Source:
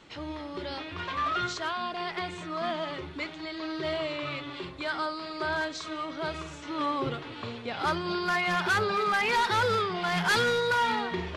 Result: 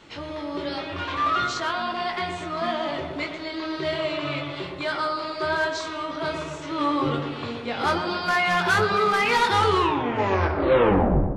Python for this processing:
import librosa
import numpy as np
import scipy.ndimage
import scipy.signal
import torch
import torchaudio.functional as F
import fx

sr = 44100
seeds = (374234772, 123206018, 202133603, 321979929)

y = fx.tape_stop_end(x, sr, length_s=1.93)
y = fx.doubler(y, sr, ms=21.0, db=-5.0)
y = fx.echo_tape(y, sr, ms=121, feedback_pct=75, wet_db=-4, lp_hz=1200.0, drive_db=20.0, wow_cents=20)
y = F.gain(torch.from_numpy(y), 3.5).numpy()